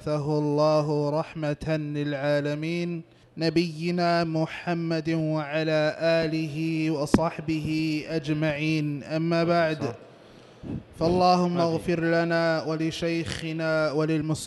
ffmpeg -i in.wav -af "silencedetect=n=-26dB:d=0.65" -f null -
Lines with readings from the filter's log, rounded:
silence_start: 9.91
silence_end: 10.70 | silence_duration: 0.79